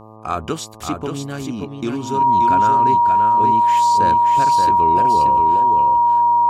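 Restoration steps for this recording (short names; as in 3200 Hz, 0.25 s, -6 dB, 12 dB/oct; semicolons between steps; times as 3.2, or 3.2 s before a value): de-hum 109.2 Hz, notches 11; notch 950 Hz, Q 30; inverse comb 0.579 s -5 dB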